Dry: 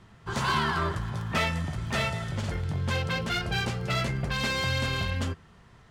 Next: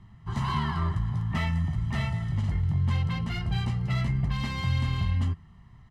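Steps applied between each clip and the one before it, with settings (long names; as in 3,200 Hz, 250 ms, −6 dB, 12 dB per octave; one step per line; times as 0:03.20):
bass and treble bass +9 dB, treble −6 dB
comb filter 1 ms, depth 63%
level −7.5 dB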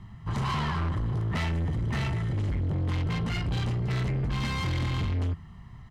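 soft clipping −31.5 dBFS, distortion −8 dB
level +6 dB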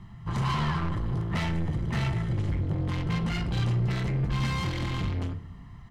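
rectangular room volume 2,300 cubic metres, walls furnished, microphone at 0.81 metres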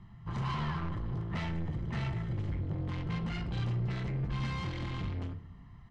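high-frequency loss of the air 81 metres
level −6.5 dB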